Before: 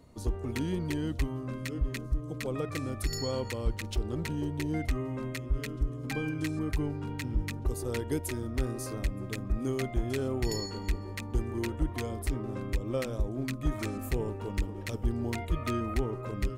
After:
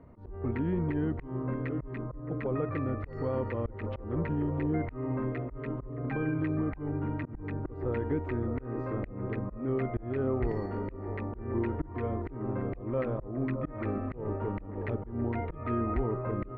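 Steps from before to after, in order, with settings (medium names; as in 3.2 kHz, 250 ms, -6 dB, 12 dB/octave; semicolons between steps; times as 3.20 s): peak limiter -25 dBFS, peak gain reduction 5.5 dB; feedback echo behind a band-pass 617 ms, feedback 58%, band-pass 640 Hz, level -7.5 dB; slow attack 205 ms; low-pass 1.9 kHz 24 dB/octave; trim +3.5 dB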